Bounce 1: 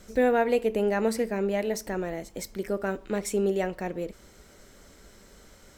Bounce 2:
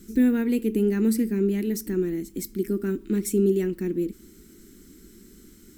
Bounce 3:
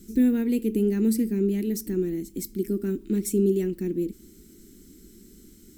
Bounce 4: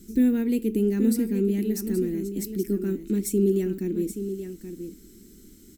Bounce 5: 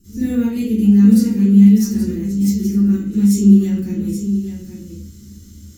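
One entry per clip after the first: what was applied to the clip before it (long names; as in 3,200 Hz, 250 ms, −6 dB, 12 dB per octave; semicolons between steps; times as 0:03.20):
drawn EQ curve 120 Hz 0 dB, 220 Hz +9 dB, 350 Hz +11 dB, 610 Hz −24 dB, 1,400 Hz −7 dB, 6,200 Hz −1 dB, 13,000 Hz +10 dB
parametric band 1,300 Hz −8 dB 1.7 octaves
single-tap delay 826 ms −9.5 dB
convolution reverb RT60 0.40 s, pre-delay 36 ms, DRR −14.5 dB; level −11 dB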